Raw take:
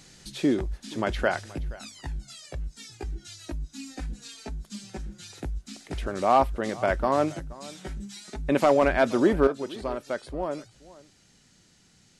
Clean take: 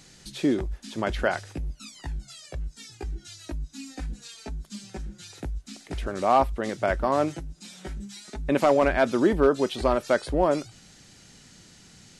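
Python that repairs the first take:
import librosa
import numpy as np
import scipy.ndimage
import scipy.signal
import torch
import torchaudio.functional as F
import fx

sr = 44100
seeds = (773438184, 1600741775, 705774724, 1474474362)

y = fx.fix_echo_inverse(x, sr, delay_ms=476, level_db=-20.0)
y = fx.gain(y, sr, db=fx.steps((0.0, 0.0), (9.47, 8.5)))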